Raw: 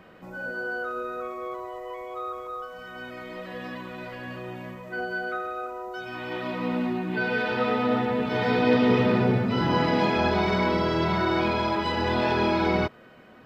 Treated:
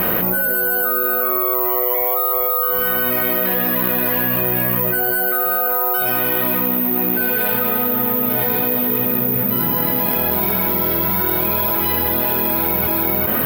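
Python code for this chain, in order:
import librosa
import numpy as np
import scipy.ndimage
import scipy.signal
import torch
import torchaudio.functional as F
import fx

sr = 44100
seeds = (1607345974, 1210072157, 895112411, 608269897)

p1 = x + fx.echo_single(x, sr, ms=388, db=-8.0, dry=0)
p2 = (np.kron(scipy.signal.resample_poly(p1, 1, 3), np.eye(3)[0]) * 3)[:len(p1)]
p3 = fx.env_flatten(p2, sr, amount_pct=100)
y = F.gain(torch.from_numpy(p3), -5.5).numpy()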